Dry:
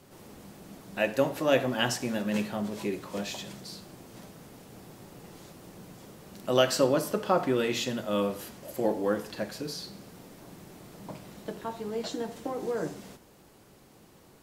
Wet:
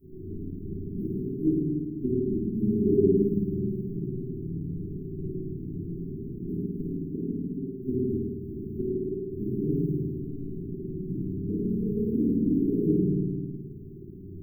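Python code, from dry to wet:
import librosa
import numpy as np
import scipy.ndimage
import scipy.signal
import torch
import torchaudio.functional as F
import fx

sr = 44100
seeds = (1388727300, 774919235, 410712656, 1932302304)

y = scipy.ndimage.median_filter(x, 25, mode='constant')
y = fx.high_shelf(y, sr, hz=3400.0, db=-11.5)
y = fx.gate_flip(y, sr, shuts_db=-21.0, range_db=-28)
y = fx.room_flutter(y, sr, wall_m=9.2, rt60_s=1.4)
y = fx.room_shoebox(y, sr, seeds[0], volume_m3=310.0, walls='mixed', distance_m=7.4)
y = fx.dmg_noise_colour(y, sr, seeds[1], colour='pink', level_db=-64.0)
y = fx.brickwall_bandstop(y, sr, low_hz=430.0, high_hz=12000.0)
y = y * librosa.db_to_amplitude(-6.0)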